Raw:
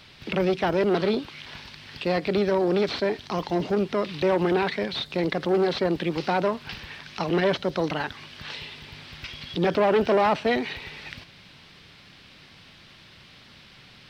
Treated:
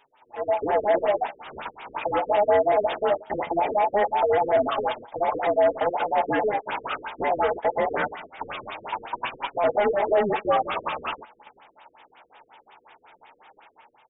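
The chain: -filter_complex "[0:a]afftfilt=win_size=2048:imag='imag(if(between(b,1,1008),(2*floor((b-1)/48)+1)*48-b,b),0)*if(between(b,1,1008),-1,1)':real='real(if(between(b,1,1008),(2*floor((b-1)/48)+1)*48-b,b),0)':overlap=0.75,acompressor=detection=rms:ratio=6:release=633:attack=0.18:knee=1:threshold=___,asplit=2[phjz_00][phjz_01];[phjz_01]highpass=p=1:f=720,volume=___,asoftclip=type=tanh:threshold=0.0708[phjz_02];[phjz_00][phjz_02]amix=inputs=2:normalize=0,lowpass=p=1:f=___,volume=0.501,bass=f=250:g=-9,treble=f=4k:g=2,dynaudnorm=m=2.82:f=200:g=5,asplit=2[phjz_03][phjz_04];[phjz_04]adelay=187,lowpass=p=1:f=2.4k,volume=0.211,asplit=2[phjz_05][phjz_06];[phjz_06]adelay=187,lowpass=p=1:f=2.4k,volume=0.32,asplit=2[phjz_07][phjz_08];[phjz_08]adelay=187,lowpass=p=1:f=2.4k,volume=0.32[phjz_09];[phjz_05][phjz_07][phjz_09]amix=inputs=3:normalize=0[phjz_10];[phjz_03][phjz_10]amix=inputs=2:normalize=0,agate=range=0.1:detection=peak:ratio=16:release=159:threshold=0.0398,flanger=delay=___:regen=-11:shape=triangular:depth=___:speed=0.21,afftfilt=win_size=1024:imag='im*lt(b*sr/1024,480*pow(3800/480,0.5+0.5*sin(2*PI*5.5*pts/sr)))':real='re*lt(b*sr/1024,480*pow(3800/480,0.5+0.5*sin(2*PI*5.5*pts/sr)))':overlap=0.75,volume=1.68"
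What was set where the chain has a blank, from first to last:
0.0501, 17.8, 1k, 7.1, 9.1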